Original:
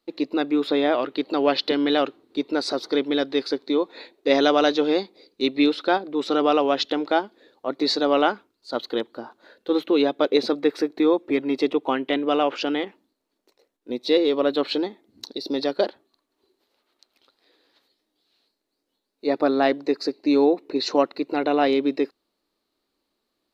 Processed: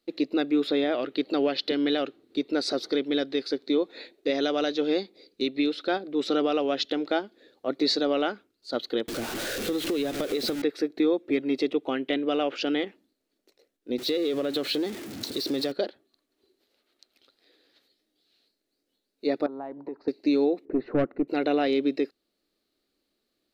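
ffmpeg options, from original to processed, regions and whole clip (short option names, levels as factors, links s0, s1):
-filter_complex "[0:a]asettb=1/sr,asplit=3[s0][s1][s2];[s0]atrim=end=9.084[s3];[s1]atrim=start=9.08:end=10.62,asetpts=PTS-STARTPTS,afade=t=in:d=0.004:c=qsin,afade=t=out:st=1.536:d=0.004:c=qsin,aeval=exprs='val(0)+0.5*0.0501*sgn(val(0))':c=same,acrusher=bits=7:dc=4:mix=0:aa=0.000001,acompressor=threshold=0.0631:ratio=5:attack=3.2:release=140:knee=1:detection=peak[s4];[s2]atrim=start=10.616[s5];[s3][s4]acrossfade=d=0.004:c1=hsin:c2=qsin[s6];[s6][s5]acrossfade=d=0.004:c1=qsin:c2=hsin,asettb=1/sr,asplit=3[s7][s8][s9];[s7]atrim=end=13.984[s10];[s8]atrim=start=13.98:end=15.72,asetpts=PTS-STARTPTS,afade=t=in:d=0.004:c=qsin,afade=t=out:st=1.736:d=0.004:c=qsin,aeval=exprs='val(0)+0.5*0.0237*sgn(val(0))':c=same,highpass=81,acompressor=threshold=0.0708:ratio=4:attack=3.2:release=140:knee=1:detection=peak[s11];[s9]atrim=start=15.716[s12];[s10][s11]acrossfade=d=0.004:c1=hsin:c2=qsin[s13];[s13][s12]acrossfade=d=0.004:c1=qsin:c2=hsin,asettb=1/sr,asplit=3[s14][s15][s16];[s14]atrim=end=19.464[s17];[s15]atrim=start=19.46:end=20.08,asetpts=PTS-STARTPTS,afade=t=in:d=0.004:c=qsin,afade=t=out:st=0.616:d=0.004:c=qsin,equalizer=f=600:t=o:w=2.7:g=-7,acompressor=threshold=0.0251:ratio=6:attack=3.2:release=140:knee=1:detection=peak,lowpass=f=930:t=q:w=11[s18];[s16]atrim=start=20.076[s19];[s17][s18]acrossfade=d=0.004:c1=hsin:c2=qsin[s20];[s20][s19]acrossfade=d=0.004:c1=qsin:c2=hsin,asettb=1/sr,asplit=3[s21][s22][s23];[s21]atrim=end=20.654[s24];[s22]atrim=start=20.65:end=21.28,asetpts=PTS-STARTPTS,afade=t=in:d=0.004:c=qsin,afade=t=out:st=0.626:d=0.004:c=qsin,lowpass=f=1700:w=0.5412,lowpass=f=1700:w=1.3066,lowshelf=f=280:g=10,aeval=exprs='(tanh(4.47*val(0)+0.25)-tanh(0.25))/4.47':c=same[s25];[s23]atrim=start=21.276[s26];[s24][s25]acrossfade=d=0.004:c1=hsin:c2=qsin[s27];[s27][s26]acrossfade=d=0.004:c1=qsin:c2=hsin,equalizer=f=970:t=o:w=0.59:g=-11,alimiter=limit=0.178:level=0:latency=1:release=435"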